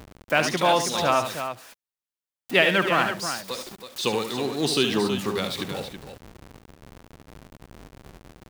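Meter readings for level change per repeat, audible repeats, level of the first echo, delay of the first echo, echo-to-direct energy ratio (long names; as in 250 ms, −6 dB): repeats not evenly spaced, 2, −8.5 dB, 72 ms, −5.5 dB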